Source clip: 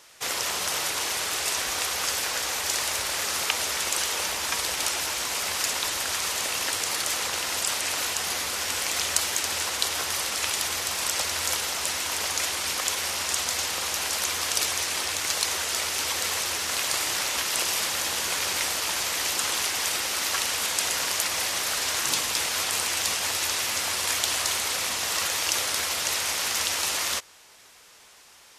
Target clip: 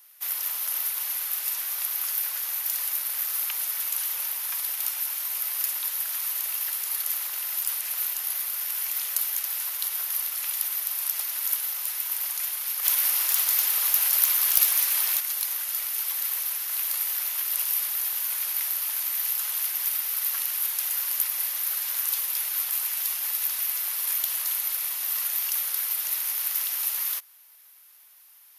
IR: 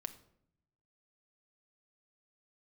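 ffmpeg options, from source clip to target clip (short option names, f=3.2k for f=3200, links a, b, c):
-filter_complex "[0:a]highpass=930,asplit=3[a][b][c];[a]afade=t=out:st=12.83:d=0.02[d];[b]acontrast=74,afade=t=in:st=12.83:d=0.02,afade=t=out:st=15.19:d=0.02[e];[c]afade=t=in:st=15.19:d=0.02[f];[d][e][f]amix=inputs=3:normalize=0,aexciter=amount=10.7:drive=8.1:freq=11k,volume=-10.5dB"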